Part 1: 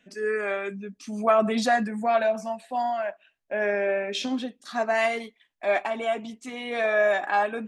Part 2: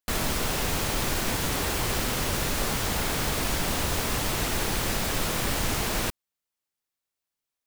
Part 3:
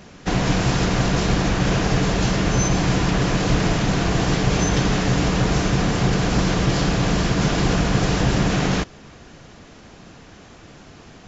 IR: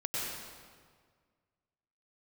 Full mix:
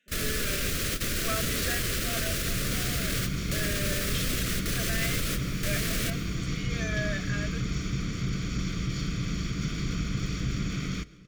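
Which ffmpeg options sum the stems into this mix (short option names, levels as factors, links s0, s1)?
-filter_complex "[0:a]lowshelf=f=450:g=-11.5,volume=0.473,asplit=2[s0][s1];[1:a]alimiter=limit=0.106:level=0:latency=1:release=295,volume=1.41,asplit=2[s2][s3];[s3]volume=0.1[s4];[2:a]aecho=1:1:0.9:0.58,aeval=exprs='sgn(val(0))*max(abs(val(0))-0.015,0)':c=same,adelay=2200,volume=0.237,asplit=2[s5][s6];[s6]volume=0.0708[s7];[s1]apad=whole_len=337861[s8];[s2][s8]sidechaingate=range=0.0224:threshold=0.00141:ratio=16:detection=peak[s9];[s9][s5]amix=inputs=2:normalize=0,equalizer=f=420:t=o:w=1.7:g=-3.5,alimiter=limit=0.1:level=0:latency=1:release=24,volume=1[s10];[3:a]atrim=start_sample=2205[s11];[s4][s7]amix=inputs=2:normalize=0[s12];[s12][s11]afir=irnorm=-1:irlink=0[s13];[s0][s10][s13]amix=inputs=3:normalize=0,asuperstop=centerf=870:order=4:qfactor=1.2"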